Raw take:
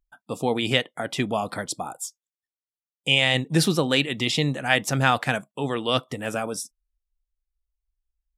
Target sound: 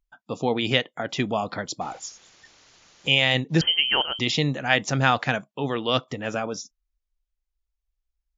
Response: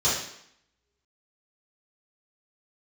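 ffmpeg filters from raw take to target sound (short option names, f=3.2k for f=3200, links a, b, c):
-filter_complex "[0:a]asettb=1/sr,asplit=3[a][b][c];[a]atrim=end=1.814[d];[b]atrim=start=1.81:end=3.08,asetpts=PTS-STARTPTS,afade=t=in:d=0.004:c=qsin,afade=t=out:st=1.266:d=0.004:c=qsin,aeval=exprs='val(0)+0.5*0.0112*sgn(val(0))':c=same[e];[c]atrim=start=3.076[f];[d][e]acrossfade=d=0.004:c1=hsin:c2=qsin[g];[g][f]acrossfade=d=0.004:c1=qsin:c2=hsin,asettb=1/sr,asplit=3[h][i][j];[h]atrim=end=3.614[k];[i]atrim=start=3.61:end=4.19,asetpts=PTS-STARTPTS,afade=t=in:d=0.004:c=qsin,afade=t=out:st=0.576:d=0.004:c=qsin,lowpass=f=2.8k:t=q:w=0.5098,lowpass=f=2.8k:t=q:w=0.6013,lowpass=f=2.8k:t=q:w=0.9,lowpass=f=2.8k:t=q:w=2.563,afreqshift=-3300[l];[j]atrim=start=4.186[m];[k][l]acrossfade=d=0.004:c1=hsin:c2=qsin[n];[n][m]acrossfade=d=0.004:c1=qsin:c2=hsin" -ar 16000 -c:a wmav2 -b:a 128k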